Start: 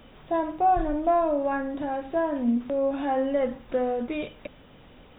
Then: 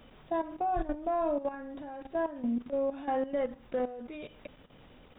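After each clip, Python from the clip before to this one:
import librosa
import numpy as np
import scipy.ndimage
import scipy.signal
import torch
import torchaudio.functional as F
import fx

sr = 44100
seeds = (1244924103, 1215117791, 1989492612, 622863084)

y = fx.level_steps(x, sr, step_db=13)
y = F.gain(torch.from_numpy(y), -3.0).numpy()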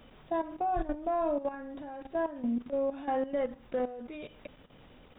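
y = x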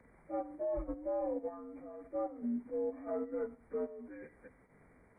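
y = fx.partial_stretch(x, sr, pct=83)
y = F.gain(torch.from_numpy(y), -5.0).numpy()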